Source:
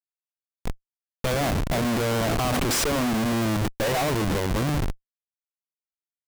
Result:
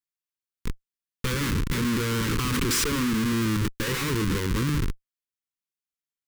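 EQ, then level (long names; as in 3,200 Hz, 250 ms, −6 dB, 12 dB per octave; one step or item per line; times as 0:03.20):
Butterworth band-reject 680 Hz, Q 1.1
0.0 dB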